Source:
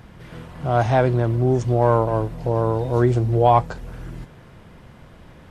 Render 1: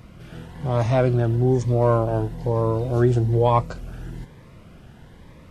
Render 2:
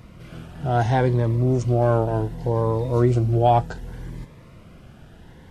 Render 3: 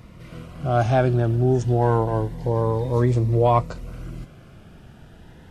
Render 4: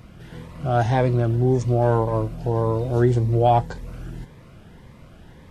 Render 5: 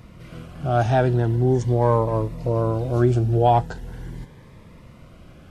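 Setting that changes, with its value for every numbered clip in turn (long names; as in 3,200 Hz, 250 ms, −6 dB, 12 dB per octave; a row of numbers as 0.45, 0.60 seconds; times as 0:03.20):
phaser whose notches keep moving one way, speed: 1.1, 0.67, 0.28, 1.8, 0.41 Hertz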